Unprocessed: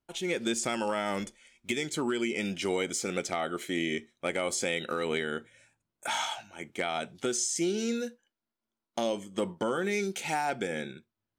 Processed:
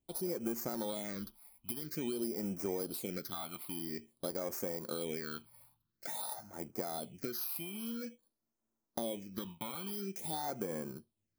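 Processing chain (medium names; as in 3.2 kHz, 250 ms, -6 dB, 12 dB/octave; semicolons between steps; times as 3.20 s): bit-reversed sample order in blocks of 16 samples; compression 2.5:1, threshold -39 dBFS, peak gain reduction 9.5 dB; phase shifter stages 6, 0.49 Hz, lowest notch 430–3800 Hz; trim +1.5 dB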